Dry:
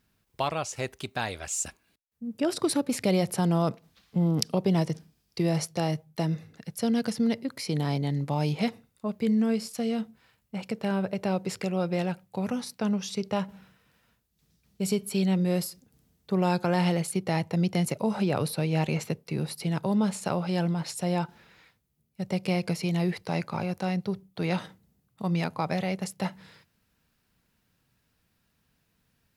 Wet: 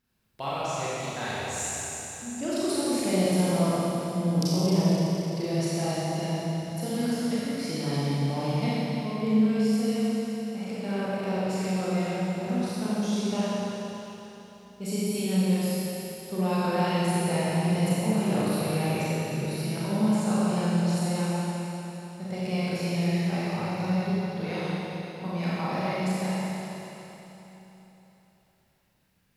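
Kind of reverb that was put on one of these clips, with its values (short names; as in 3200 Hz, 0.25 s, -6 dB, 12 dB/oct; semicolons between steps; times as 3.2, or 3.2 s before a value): Schroeder reverb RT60 3.6 s, combs from 29 ms, DRR -9.5 dB; gain -8.5 dB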